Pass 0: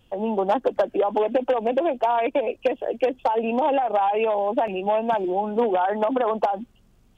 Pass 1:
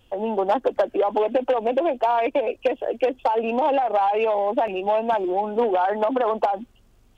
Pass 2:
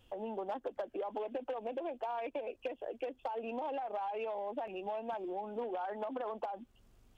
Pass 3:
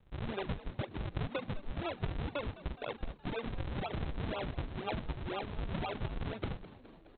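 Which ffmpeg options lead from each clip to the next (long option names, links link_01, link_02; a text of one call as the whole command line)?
ffmpeg -i in.wav -filter_complex "[0:a]equalizer=frequency=170:width=2:gain=-8.5,asplit=2[link_01][link_02];[link_02]asoftclip=type=tanh:threshold=-25.5dB,volume=-11dB[link_03];[link_01][link_03]amix=inputs=2:normalize=0" out.wav
ffmpeg -i in.wav -af "acompressor=threshold=-38dB:ratio=2,volume=-7dB" out.wav
ffmpeg -i in.wav -filter_complex "[0:a]aresample=8000,acrusher=samples=21:mix=1:aa=0.000001:lfo=1:lforange=33.6:lforate=2,aresample=44100,asplit=7[link_01][link_02][link_03][link_04][link_05][link_06][link_07];[link_02]adelay=209,afreqshift=74,volume=-17dB[link_08];[link_03]adelay=418,afreqshift=148,volume=-20.9dB[link_09];[link_04]adelay=627,afreqshift=222,volume=-24.8dB[link_10];[link_05]adelay=836,afreqshift=296,volume=-28.6dB[link_11];[link_06]adelay=1045,afreqshift=370,volume=-32.5dB[link_12];[link_07]adelay=1254,afreqshift=444,volume=-36.4dB[link_13];[link_01][link_08][link_09][link_10][link_11][link_12][link_13]amix=inputs=7:normalize=0,volume=1.5dB" out.wav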